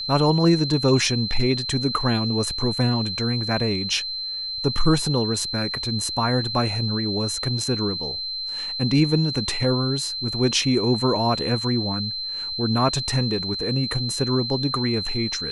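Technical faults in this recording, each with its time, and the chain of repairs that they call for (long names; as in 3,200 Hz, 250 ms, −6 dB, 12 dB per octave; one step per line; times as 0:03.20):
whistle 4,100 Hz −27 dBFS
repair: notch filter 4,100 Hz, Q 30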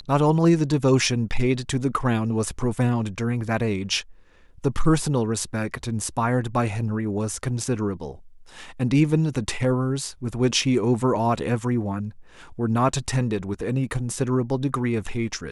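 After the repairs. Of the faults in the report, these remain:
none of them is left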